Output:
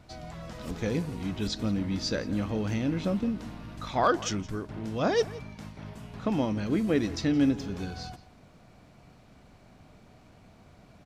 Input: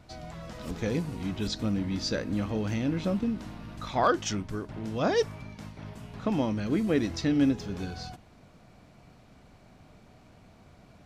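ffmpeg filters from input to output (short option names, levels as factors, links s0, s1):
-filter_complex "[0:a]asplit=2[s0][s1];[s1]adelay=169.1,volume=0.126,highshelf=f=4000:g=-3.8[s2];[s0][s2]amix=inputs=2:normalize=0"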